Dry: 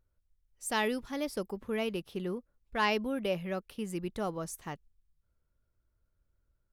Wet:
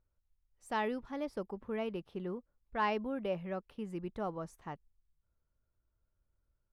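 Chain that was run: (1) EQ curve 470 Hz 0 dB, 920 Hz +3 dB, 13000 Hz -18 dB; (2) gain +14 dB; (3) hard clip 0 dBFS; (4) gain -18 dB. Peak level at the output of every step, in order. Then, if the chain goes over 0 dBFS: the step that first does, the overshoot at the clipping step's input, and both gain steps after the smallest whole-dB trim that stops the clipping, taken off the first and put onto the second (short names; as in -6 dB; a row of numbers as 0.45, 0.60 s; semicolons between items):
-17.0, -3.0, -3.0, -21.0 dBFS; no overload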